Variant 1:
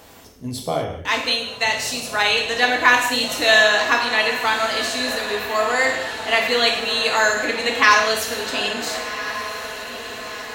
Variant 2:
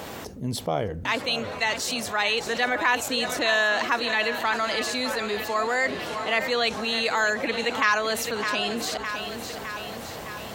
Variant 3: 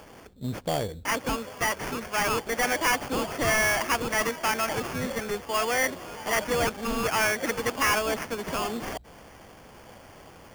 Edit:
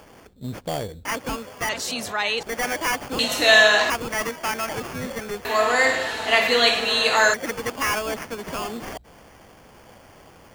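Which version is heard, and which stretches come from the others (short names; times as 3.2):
3
1.69–2.43 from 2
3.19–3.9 from 1
5.45–7.34 from 1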